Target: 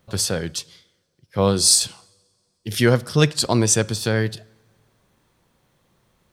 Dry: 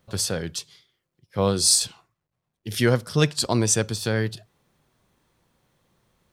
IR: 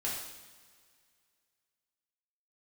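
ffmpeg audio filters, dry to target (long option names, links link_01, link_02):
-filter_complex "[0:a]asplit=2[link_01][link_02];[1:a]atrim=start_sample=2205,highshelf=frequency=7500:gain=-11[link_03];[link_02][link_03]afir=irnorm=-1:irlink=0,volume=-24.5dB[link_04];[link_01][link_04]amix=inputs=2:normalize=0,volume=3dB"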